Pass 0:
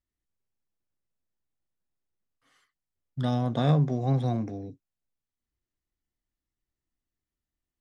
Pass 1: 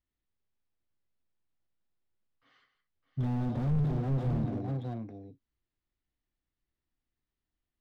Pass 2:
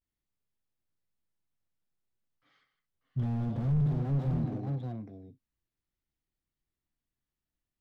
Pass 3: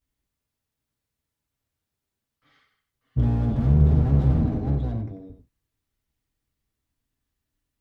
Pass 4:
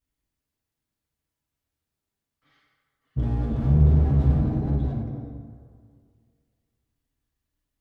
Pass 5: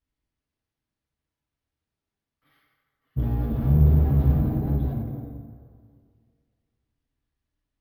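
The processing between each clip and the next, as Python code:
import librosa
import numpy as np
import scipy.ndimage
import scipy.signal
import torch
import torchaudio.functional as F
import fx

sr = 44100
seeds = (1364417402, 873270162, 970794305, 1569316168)

y1 = scipy.signal.sosfilt(scipy.signal.butter(4, 4400.0, 'lowpass', fs=sr, output='sos'), x)
y1 = fx.echo_multitap(y1, sr, ms=(166, 610), db=(-12.5, -9.5))
y1 = fx.slew_limit(y1, sr, full_power_hz=7.7)
y2 = fx.peak_eq(y1, sr, hz=150.0, db=4.5, octaves=0.97)
y2 = fx.vibrato(y2, sr, rate_hz=0.51, depth_cents=87.0)
y2 = y2 * librosa.db_to_amplitude(-3.0)
y3 = fx.octave_divider(y2, sr, octaves=1, level_db=-1.0)
y3 = fx.notch_comb(y3, sr, f0_hz=180.0)
y3 = y3 + 10.0 ** (-9.0 / 20.0) * np.pad(y3, (int(92 * sr / 1000.0), 0))[:len(y3)]
y3 = y3 * librosa.db_to_amplitude(8.0)
y4 = fx.rev_plate(y3, sr, seeds[0], rt60_s=2.1, hf_ratio=0.55, predelay_ms=0, drr_db=3.5)
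y4 = y4 * librosa.db_to_amplitude(-3.0)
y5 = fx.air_absorb(y4, sr, metres=67.0)
y5 = np.repeat(scipy.signal.resample_poly(y5, 1, 3), 3)[:len(y5)]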